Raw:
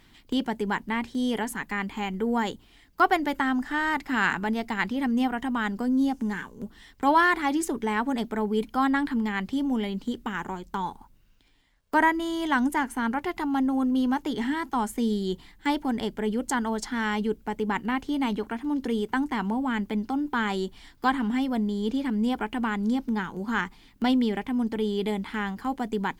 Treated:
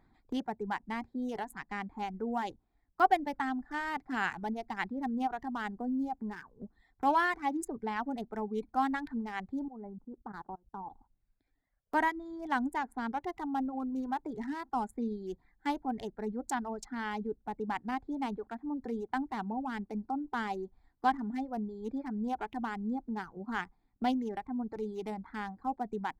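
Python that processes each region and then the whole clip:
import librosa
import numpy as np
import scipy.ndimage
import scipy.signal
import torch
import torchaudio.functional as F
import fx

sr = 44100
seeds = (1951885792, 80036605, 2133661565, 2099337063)

y = fx.chain(x, sr, fx.lowpass(hz=1500.0, slope=24),
    fx.level_steps(step_db=17), at=(9.68, 10.9))
y = fx.wiener(y, sr, points=15)
y = fx.dereverb_blind(y, sr, rt60_s=1.1)
y = fx.peak_eq(y, sr, hz=760.0, db=8.5, octaves=0.28)
y = F.gain(torch.from_numpy(y), -8.0).numpy()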